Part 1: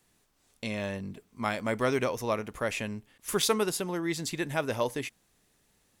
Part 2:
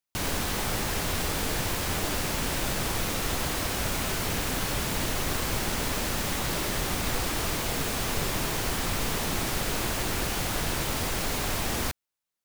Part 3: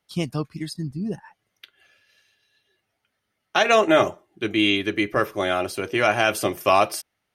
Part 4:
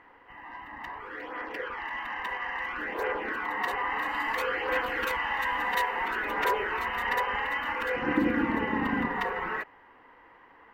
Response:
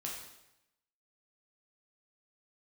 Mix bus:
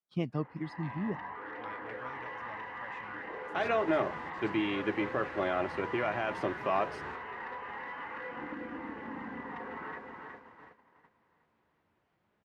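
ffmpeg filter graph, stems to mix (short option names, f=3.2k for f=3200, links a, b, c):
-filter_complex "[0:a]equalizer=f=330:t=o:w=2.2:g=-14.5,adelay=200,volume=-12.5dB[a];[1:a]flanger=delay=4.8:depth=8.9:regen=46:speed=0.66:shape=sinusoidal,adelay=1750,volume=-11.5dB,asplit=2[b][c];[c]volume=-20dB[d];[2:a]alimiter=limit=-12.5dB:level=0:latency=1:release=95,volume=-6.5dB,asplit=2[e][f];[3:a]acompressor=threshold=-38dB:ratio=10,aeval=exprs='clip(val(0),-1,0.0106)':c=same,adelay=350,volume=0dB,asplit=2[g][h];[h]volume=-5.5dB[i];[f]apad=whole_len=625840[j];[b][j]sidechaingate=range=-15dB:threshold=-57dB:ratio=16:detection=peak[k];[d][i]amix=inputs=2:normalize=0,aecho=0:1:368|736|1104|1472|1840|2208|2576|2944:1|0.53|0.281|0.149|0.0789|0.0418|0.0222|0.0117[l];[a][k][e][g][l]amix=inputs=5:normalize=0,agate=range=-15dB:threshold=-48dB:ratio=16:detection=peak,highpass=100,lowpass=2k"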